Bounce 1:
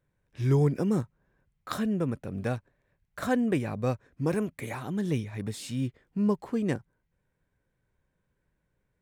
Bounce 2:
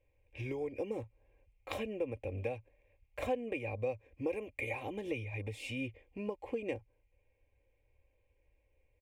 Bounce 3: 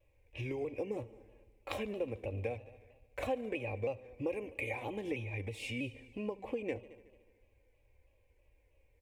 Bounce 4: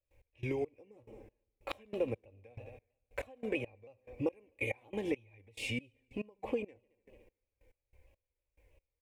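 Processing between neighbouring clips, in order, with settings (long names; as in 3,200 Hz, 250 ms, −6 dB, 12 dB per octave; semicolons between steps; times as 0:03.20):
drawn EQ curve 110 Hz 0 dB, 160 Hz −26 dB, 440 Hz +1 dB, 970 Hz −6 dB, 1,400 Hz −25 dB, 2,400 Hz +7 dB, 4,000 Hz −15 dB; downward compressor 4 to 1, threshold −39 dBFS, peak gain reduction 13 dB; comb filter 3.7 ms, depth 49%; level +4 dB
in parallel at 0 dB: downward compressor, threshold −45 dBFS, peak gain reduction 15 dB; on the sum: echo machine with several playback heads 74 ms, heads all three, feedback 48%, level −23 dB; pitch modulation by a square or saw wave saw down 3.1 Hz, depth 100 cents; level −2.5 dB
gate pattern ".x..xx....xx.." 140 BPM −24 dB; level +3.5 dB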